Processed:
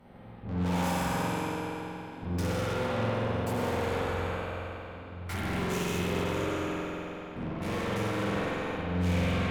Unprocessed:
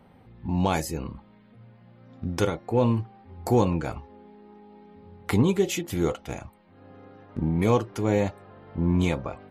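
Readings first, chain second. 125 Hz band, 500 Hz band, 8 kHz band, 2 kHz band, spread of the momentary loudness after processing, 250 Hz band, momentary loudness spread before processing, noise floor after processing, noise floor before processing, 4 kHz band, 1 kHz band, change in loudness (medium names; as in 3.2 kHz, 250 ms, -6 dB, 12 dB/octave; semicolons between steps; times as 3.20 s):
-4.0 dB, -4.5 dB, -4.0 dB, +3.0 dB, 9 LU, -5.5 dB, 16 LU, -44 dBFS, -55 dBFS, +0.5 dB, -1.0 dB, -6.0 dB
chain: spectral sustain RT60 1.98 s; valve stage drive 36 dB, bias 0.65; spring tank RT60 3.2 s, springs 45 ms, chirp 60 ms, DRR -6.5 dB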